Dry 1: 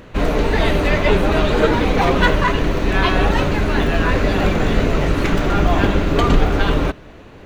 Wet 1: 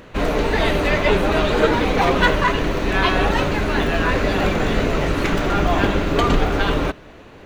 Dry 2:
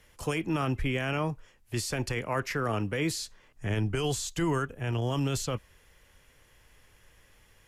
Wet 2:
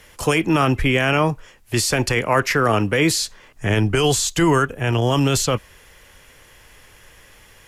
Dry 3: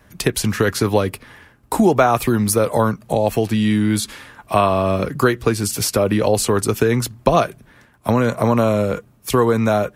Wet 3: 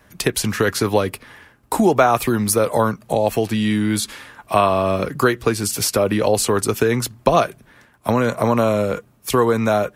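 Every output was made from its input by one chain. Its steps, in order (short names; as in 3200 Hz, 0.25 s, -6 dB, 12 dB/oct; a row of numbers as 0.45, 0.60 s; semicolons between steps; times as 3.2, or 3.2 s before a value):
low shelf 240 Hz -5 dB; match loudness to -19 LUFS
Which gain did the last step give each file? 0.0, +13.5, +0.5 dB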